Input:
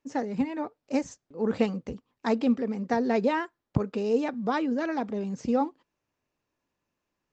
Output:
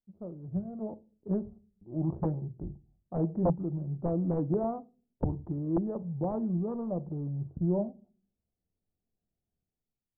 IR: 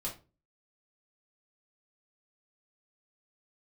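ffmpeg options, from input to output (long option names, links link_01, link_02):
-filter_complex "[0:a]equalizer=frequency=420:width_type=o:width=2.8:gain=-8,asplit=2[link_01][link_02];[1:a]atrim=start_sample=2205,asetrate=41454,aresample=44100[link_03];[link_02][link_03]afir=irnorm=-1:irlink=0,volume=-12dB[link_04];[link_01][link_04]amix=inputs=2:normalize=0,aeval=exprs='(mod(10*val(0)+1,2)-1)/10':channel_layout=same,adynamicsmooth=sensitivity=6:basefreq=770,lowpass=frequency=1100:width=0.5412,lowpass=frequency=1100:width=1.3066,aemphasis=mode=reproduction:type=75kf,asetrate=31752,aresample=44100,dynaudnorm=framelen=160:gausssize=7:maxgain=9.5dB,volume=-8dB"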